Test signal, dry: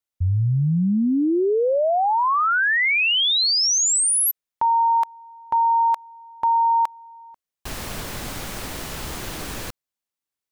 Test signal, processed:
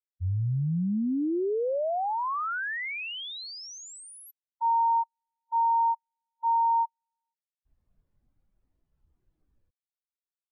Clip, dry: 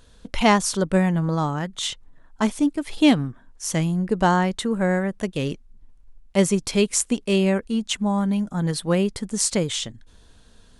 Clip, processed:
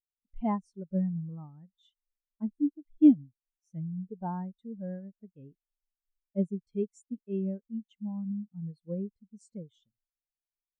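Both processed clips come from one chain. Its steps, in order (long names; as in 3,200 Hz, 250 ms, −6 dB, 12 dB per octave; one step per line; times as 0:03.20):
every bin expanded away from the loudest bin 2.5 to 1
level −5.5 dB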